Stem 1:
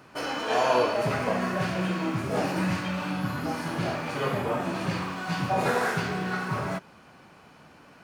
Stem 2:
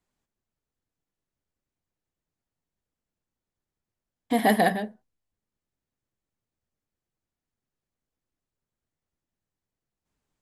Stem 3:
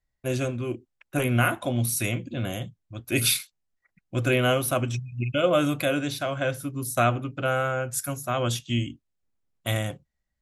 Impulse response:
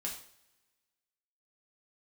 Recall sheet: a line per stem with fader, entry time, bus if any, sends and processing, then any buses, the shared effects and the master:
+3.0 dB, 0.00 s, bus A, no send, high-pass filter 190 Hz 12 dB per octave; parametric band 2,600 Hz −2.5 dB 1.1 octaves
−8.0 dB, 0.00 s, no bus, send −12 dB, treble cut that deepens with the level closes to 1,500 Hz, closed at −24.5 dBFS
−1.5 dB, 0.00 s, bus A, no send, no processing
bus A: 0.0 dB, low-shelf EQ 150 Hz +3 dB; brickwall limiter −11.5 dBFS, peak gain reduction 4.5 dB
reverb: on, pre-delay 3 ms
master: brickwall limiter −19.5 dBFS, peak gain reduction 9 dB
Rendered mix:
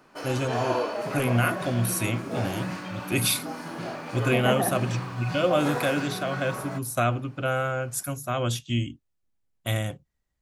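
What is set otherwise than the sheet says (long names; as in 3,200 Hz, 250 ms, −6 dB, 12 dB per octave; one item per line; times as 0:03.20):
stem 1 +3.0 dB → −4.0 dB
master: missing brickwall limiter −19.5 dBFS, peak gain reduction 9 dB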